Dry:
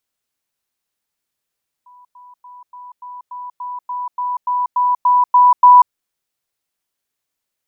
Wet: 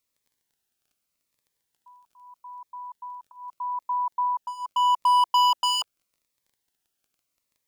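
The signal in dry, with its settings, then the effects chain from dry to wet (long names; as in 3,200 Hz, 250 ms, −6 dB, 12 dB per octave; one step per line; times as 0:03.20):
level staircase 988 Hz −42 dBFS, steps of 3 dB, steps 14, 0.19 s 0.10 s
hard clipping −15.5 dBFS
surface crackle 14 per second −51 dBFS
phaser whose notches keep moving one way falling 0.81 Hz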